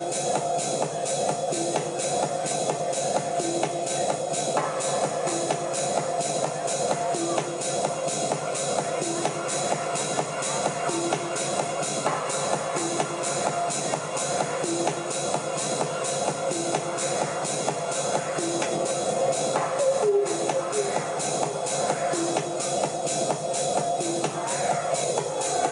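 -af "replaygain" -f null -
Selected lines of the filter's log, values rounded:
track_gain = +8.7 dB
track_peak = 0.274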